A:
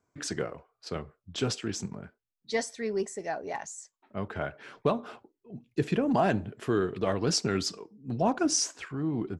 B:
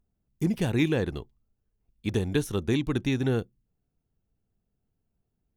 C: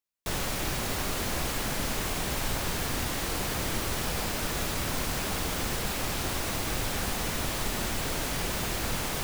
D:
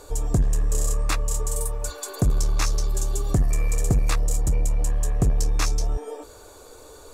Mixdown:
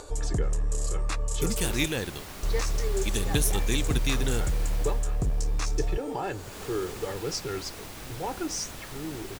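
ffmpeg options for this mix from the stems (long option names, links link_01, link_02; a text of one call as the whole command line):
ffmpeg -i stem1.wav -i stem2.wav -i stem3.wav -i stem4.wav -filter_complex "[0:a]aecho=1:1:2.3:0.9,volume=-7.5dB[link_01];[1:a]crystalizer=i=7.5:c=0,adelay=1000,volume=-6.5dB[link_02];[2:a]adelay=1300,volume=1dB,afade=type=out:start_time=4.74:duration=0.35:silence=0.266073,afade=type=in:start_time=6.32:duration=0.28:silence=0.266073[link_03];[3:a]lowpass=frequency=9900:width=0.5412,lowpass=frequency=9900:width=1.3066,acompressor=mode=upward:threshold=-36dB:ratio=2.5,alimiter=limit=-18dB:level=0:latency=1:release=93,volume=-3.5dB,asplit=3[link_04][link_05][link_06];[link_04]atrim=end=1.86,asetpts=PTS-STARTPTS,afade=type=out:start_time=1.856:duration=0.004:curve=hsin[link_07];[link_05]atrim=start=1.86:end=2.43,asetpts=PTS-STARTPTS,volume=0[link_08];[link_06]atrim=start=2.43,asetpts=PTS-STARTPTS,afade=type=in:duration=0.004:curve=hsin[link_09];[link_07][link_08][link_09]concat=n=3:v=0:a=1[link_10];[link_01][link_02][link_03][link_10]amix=inputs=4:normalize=0" out.wav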